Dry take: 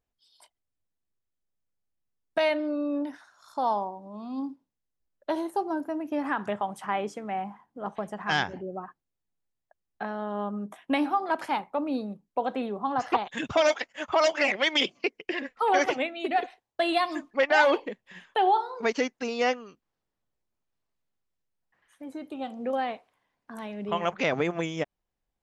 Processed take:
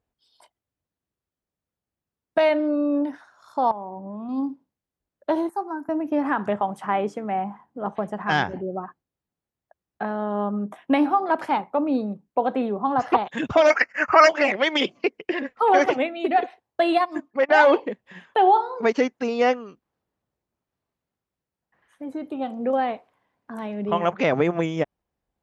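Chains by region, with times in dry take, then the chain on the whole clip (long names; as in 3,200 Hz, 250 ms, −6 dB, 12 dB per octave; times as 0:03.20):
0:03.71–0:04.29: low-shelf EQ 130 Hz +9.5 dB + downward compressor 10 to 1, threshold −36 dBFS + Savitzky-Golay smoothing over 25 samples
0:05.49–0:05.89: high-pass filter 330 Hz + phaser with its sweep stopped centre 1,300 Hz, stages 4 + multiband upward and downward expander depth 40%
0:13.70–0:14.29: Butterworth band-reject 3,500 Hz, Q 1.3 + flat-topped bell 2,600 Hz +13 dB 2.4 octaves
0:16.97–0:17.49: transient designer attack −4 dB, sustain −12 dB + dynamic equaliser 3,400 Hz, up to −6 dB, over −46 dBFS, Q 1.5
whole clip: high-pass filter 53 Hz; high-shelf EQ 2,200 Hz −10.5 dB; level +7 dB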